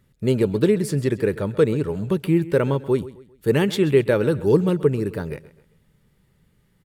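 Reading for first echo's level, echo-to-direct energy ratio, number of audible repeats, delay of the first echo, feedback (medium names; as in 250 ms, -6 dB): -17.5 dB, -17.0 dB, 3, 132 ms, 37%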